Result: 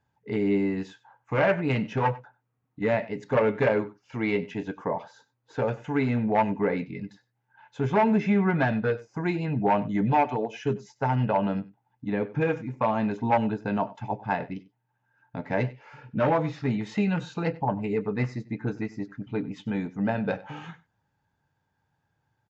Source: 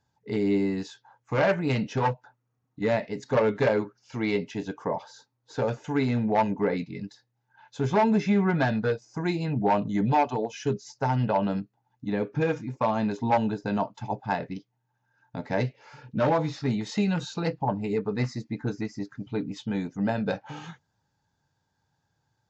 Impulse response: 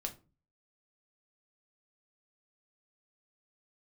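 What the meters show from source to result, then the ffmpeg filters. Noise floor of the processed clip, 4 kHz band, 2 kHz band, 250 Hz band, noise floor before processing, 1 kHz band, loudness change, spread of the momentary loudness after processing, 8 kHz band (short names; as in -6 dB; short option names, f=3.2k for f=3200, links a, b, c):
-77 dBFS, -4.0 dB, +1.5 dB, 0.0 dB, -77 dBFS, +0.5 dB, +0.5 dB, 11 LU, n/a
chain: -filter_complex "[0:a]highshelf=f=3.4k:t=q:w=1.5:g=-7.5,asplit=2[a][b];[b]aecho=0:1:95:0.106[c];[a][c]amix=inputs=2:normalize=0"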